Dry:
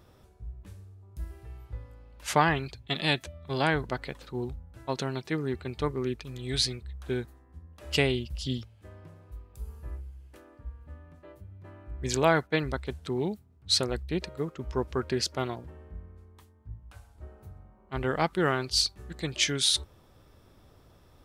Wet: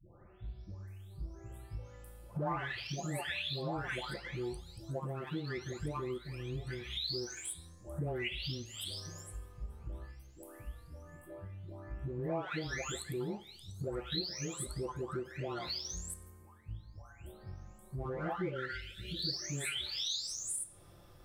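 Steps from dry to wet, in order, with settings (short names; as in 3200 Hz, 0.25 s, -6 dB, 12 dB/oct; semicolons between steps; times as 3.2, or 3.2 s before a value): spectral delay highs late, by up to 0.879 s; in parallel at -8 dB: backlash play -37.5 dBFS; on the sum: spectral gain 18.45–19.34, 600–1300 Hz -26 dB; compressor 3:1, threshold -41 dBFS, peak gain reduction 17 dB; two-slope reverb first 0.56 s, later 1.7 s, from -26 dB, DRR 12 dB; gain +2 dB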